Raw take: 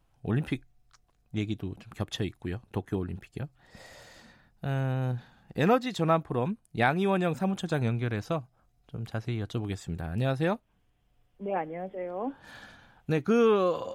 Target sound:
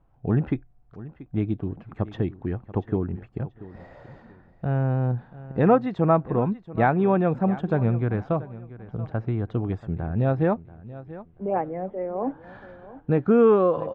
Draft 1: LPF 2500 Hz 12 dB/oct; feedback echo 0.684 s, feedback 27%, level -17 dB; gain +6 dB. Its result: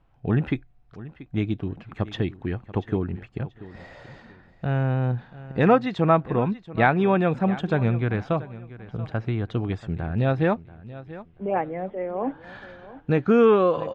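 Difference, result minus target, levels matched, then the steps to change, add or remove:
2000 Hz band +5.5 dB
change: LPF 1200 Hz 12 dB/oct

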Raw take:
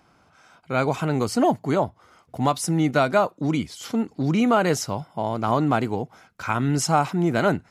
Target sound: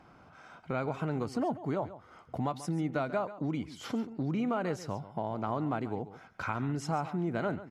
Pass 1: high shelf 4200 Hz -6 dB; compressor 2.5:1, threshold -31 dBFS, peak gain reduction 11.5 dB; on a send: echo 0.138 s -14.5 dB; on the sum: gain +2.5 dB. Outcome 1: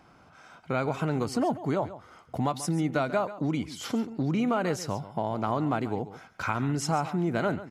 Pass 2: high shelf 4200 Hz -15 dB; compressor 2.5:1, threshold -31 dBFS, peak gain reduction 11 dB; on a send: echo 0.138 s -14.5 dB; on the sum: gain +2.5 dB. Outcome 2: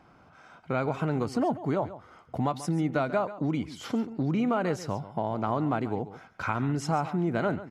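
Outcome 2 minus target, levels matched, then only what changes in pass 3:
compressor: peak gain reduction -5 dB
change: compressor 2.5:1, threshold -39 dBFS, peak gain reduction 16 dB

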